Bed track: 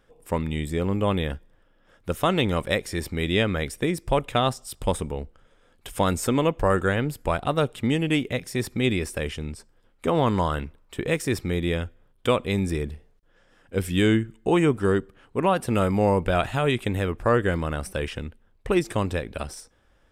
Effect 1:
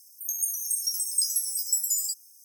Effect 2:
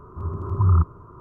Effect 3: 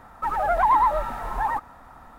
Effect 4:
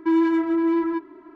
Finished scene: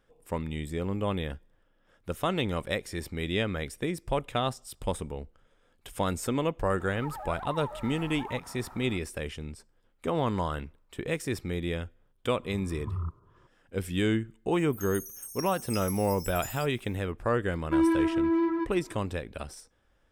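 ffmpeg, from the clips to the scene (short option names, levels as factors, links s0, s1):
-filter_complex "[0:a]volume=0.473[s0];[3:a]acompressor=threshold=0.0158:ratio=6:attack=3.2:release=140:knee=1:detection=peak[s1];[1:a]equalizer=f=7800:w=4.5:g=-10[s2];[s1]atrim=end=2.18,asetpts=PTS-STARTPTS,volume=0.75,afade=t=in:d=0.004:c=hsin,afade=t=out:st=2.176:d=0.004:c=hsin,adelay=6800[s3];[2:a]atrim=end=1.2,asetpts=PTS-STARTPTS,volume=0.15,afade=t=in:d=0.004:c=hsin,afade=t=out:st=1.196:d=0.004:c=hsin,adelay=12270[s4];[s2]atrim=end=2.44,asetpts=PTS-STARTPTS,volume=0.266,afade=t=in:d=0.004:c=hsin,afade=t=out:st=2.436:d=0.004:c=hsin,adelay=14520[s5];[4:a]atrim=end=1.35,asetpts=PTS-STARTPTS,volume=0.596,afade=t=in:d=0.004:c=hsin,afade=t=out:st=1.346:d=0.004:c=hsin,adelay=17660[s6];[s0][s3][s4][s5][s6]amix=inputs=5:normalize=0"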